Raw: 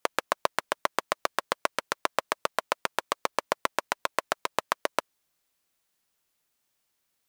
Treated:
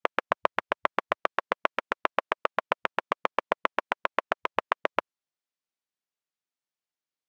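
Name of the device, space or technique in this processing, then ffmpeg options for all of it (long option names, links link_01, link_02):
over-cleaned archive recording: -af "highpass=130,lowpass=6600,afwtdn=0.01,volume=1.5dB"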